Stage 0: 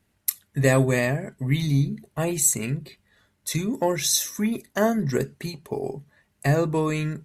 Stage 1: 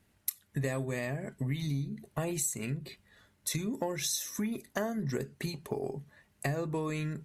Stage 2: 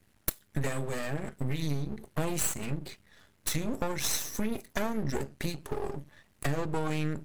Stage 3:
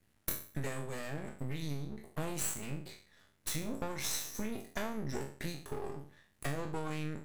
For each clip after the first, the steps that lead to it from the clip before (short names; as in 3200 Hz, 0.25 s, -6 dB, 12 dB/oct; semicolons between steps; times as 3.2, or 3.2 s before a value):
compressor 6:1, threshold -31 dBFS, peak gain reduction 16 dB
half-wave rectifier; gain +6.5 dB
spectral trails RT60 0.44 s; gain -7.5 dB